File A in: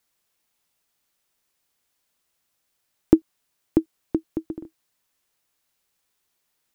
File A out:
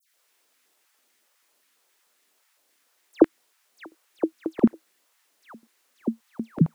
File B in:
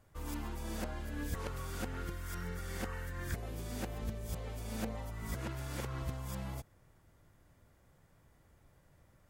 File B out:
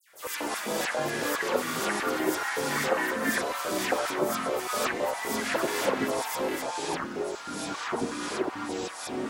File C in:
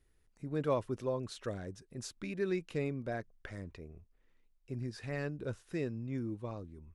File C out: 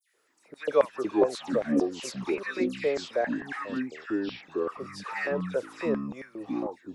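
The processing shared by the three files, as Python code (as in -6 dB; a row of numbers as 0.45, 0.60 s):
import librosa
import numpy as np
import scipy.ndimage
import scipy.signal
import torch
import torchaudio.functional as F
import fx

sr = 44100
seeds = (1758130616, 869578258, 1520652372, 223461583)

y = fx.dispersion(x, sr, late='lows', ms=91.0, hz=2800.0)
y = fx.filter_lfo_highpass(y, sr, shape='square', hz=3.7, low_hz=510.0, high_hz=1800.0, q=2.4)
y = fx.echo_pitch(y, sr, ms=88, semitones=-6, count=2, db_per_echo=-3.0)
y = y * 10.0 ** (-30 / 20.0) / np.sqrt(np.mean(np.square(y)))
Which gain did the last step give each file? +3.5, +13.0, +6.5 dB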